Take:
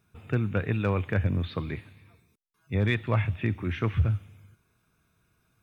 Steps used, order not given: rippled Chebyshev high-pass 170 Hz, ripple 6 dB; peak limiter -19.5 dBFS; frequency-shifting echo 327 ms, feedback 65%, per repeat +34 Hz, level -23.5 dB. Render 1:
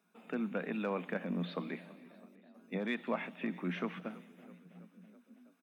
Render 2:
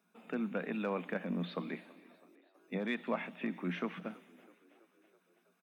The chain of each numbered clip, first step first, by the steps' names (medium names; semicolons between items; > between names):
frequency-shifting echo > peak limiter > rippled Chebyshev high-pass; peak limiter > rippled Chebyshev high-pass > frequency-shifting echo